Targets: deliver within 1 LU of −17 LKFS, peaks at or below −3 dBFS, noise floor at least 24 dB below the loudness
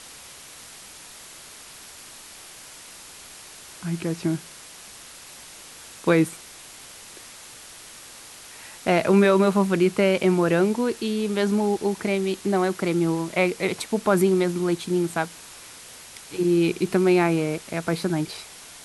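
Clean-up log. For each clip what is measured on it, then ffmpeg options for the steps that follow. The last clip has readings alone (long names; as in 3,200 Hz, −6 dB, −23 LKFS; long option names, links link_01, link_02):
background noise floor −44 dBFS; target noise floor −47 dBFS; integrated loudness −23.0 LKFS; sample peak −7.5 dBFS; target loudness −17.0 LKFS
→ -af "afftdn=noise_reduction=6:noise_floor=-44"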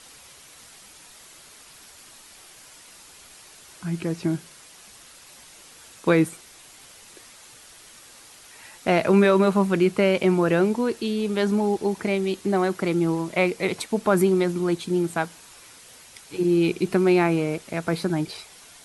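background noise floor −49 dBFS; integrated loudness −23.0 LKFS; sample peak −7.5 dBFS; target loudness −17.0 LKFS
→ -af "volume=6dB,alimiter=limit=-3dB:level=0:latency=1"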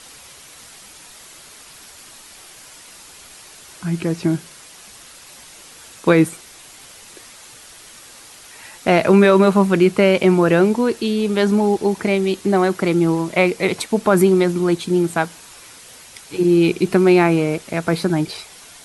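integrated loudness −17.0 LKFS; sample peak −3.0 dBFS; background noise floor −43 dBFS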